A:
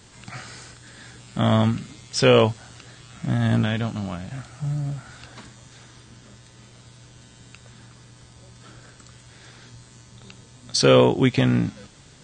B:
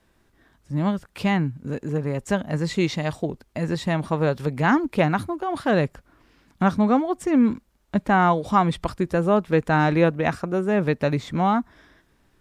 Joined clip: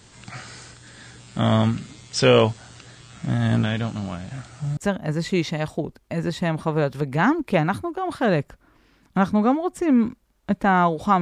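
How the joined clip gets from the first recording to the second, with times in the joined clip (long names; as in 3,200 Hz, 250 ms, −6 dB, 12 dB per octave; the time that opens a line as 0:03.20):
A
0:04.77: continue with B from 0:02.22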